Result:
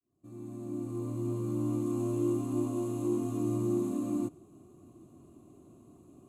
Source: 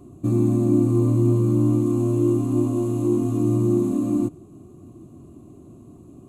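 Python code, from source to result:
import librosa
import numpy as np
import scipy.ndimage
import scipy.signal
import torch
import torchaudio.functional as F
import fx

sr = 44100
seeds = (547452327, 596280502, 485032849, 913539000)

y = fx.fade_in_head(x, sr, length_s=2.03)
y = fx.low_shelf(y, sr, hz=300.0, db=-9.0)
y = y * 10.0 ** (-5.5 / 20.0)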